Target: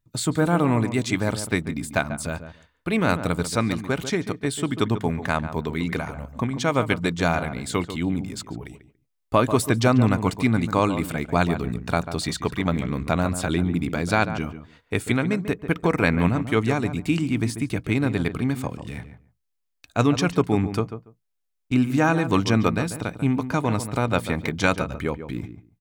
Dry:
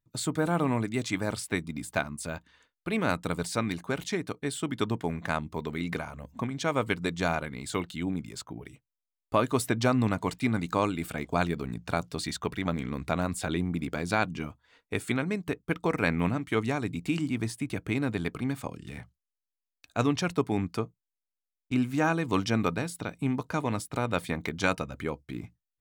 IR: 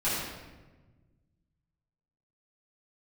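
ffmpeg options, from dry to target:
-filter_complex "[0:a]lowshelf=frequency=120:gain=5,asplit=2[link_01][link_02];[link_02]adelay=142,lowpass=frequency=1500:poles=1,volume=-10dB,asplit=2[link_03][link_04];[link_04]adelay=142,lowpass=frequency=1500:poles=1,volume=0.16[link_05];[link_03][link_05]amix=inputs=2:normalize=0[link_06];[link_01][link_06]amix=inputs=2:normalize=0,volume=5.5dB"

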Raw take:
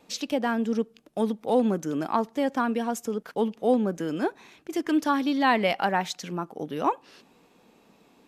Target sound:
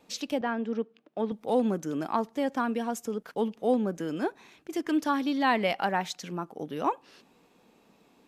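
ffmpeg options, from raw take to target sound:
ffmpeg -i in.wav -filter_complex "[0:a]asettb=1/sr,asplit=3[link_01][link_02][link_03];[link_01]atrim=end=0.414[link_04];[link_02]atrim=start=0.41:end=1.32,asetpts=PTS-STARTPTS,afade=type=in:duration=0.004:curve=qsin,afade=type=out:start_time=0.906:duration=0.004:curve=qsin,highpass=220,lowpass=3000[link_05];[link_03]atrim=start=1.316[link_06];[link_04][link_05]acrossfade=duration=0.004:curve1=hsin:curve2=qsin[link_07];[link_07][link_06]acrossfade=duration=0.004:curve1=qsin:curve2=hsin,volume=-3dB" out.wav

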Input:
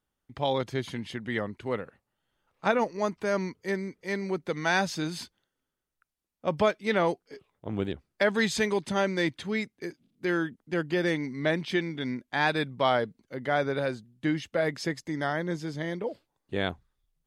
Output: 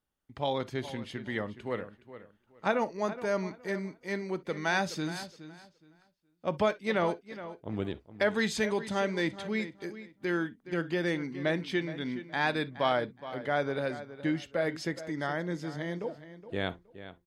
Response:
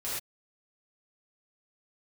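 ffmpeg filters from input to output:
-filter_complex "[0:a]asplit=2[link_01][link_02];[link_02]adelay=419,lowpass=frequency=4600:poles=1,volume=-13.5dB,asplit=2[link_03][link_04];[link_04]adelay=419,lowpass=frequency=4600:poles=1,volume=0.23,asplit=2[link_05][link_06];[link_06]adelay=419,lowpass=frequency=4600:poles=1,volume=0.23[link_07];[link_01][link_03][link_05][link_07]amix=inputs=4:normalize=0,asplit=2[link_08][link_09];[1:a]atrim=start_sample=2205,atrim=end_sample=3087,lowpass=4400[link_10];[link_09][link_10]afir=irnorm=-1:irlink=0,volume=-15dB[link_11];[link_08][link_11]amix=inputs=2:normalize=0,volume=-4dB"

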